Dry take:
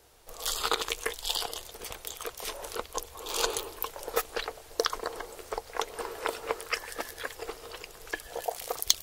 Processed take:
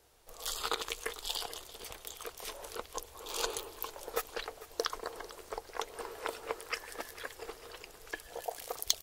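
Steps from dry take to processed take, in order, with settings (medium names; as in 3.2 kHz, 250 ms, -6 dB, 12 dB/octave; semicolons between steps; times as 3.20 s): frequency-shifting echo 446 ms, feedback 46%, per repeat -31 Hz, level -17 dB; trim -6 dB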